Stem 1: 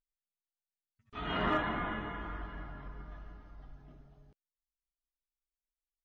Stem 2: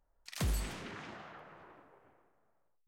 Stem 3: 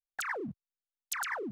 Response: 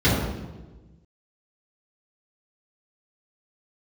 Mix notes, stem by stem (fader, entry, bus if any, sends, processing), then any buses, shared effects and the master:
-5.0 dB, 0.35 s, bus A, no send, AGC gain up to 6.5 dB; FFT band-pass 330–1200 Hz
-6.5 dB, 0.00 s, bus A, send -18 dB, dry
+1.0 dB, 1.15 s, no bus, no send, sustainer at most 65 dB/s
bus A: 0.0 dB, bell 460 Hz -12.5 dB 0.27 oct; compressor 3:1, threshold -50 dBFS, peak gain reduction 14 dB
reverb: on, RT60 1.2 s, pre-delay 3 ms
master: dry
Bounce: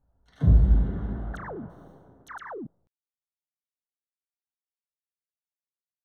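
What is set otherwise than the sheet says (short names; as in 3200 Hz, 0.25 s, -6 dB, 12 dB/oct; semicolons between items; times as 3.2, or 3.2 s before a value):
stem 1: muted; stem 2 -6.5 dB -> +2.0 dB; master: extra running mean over 18 samples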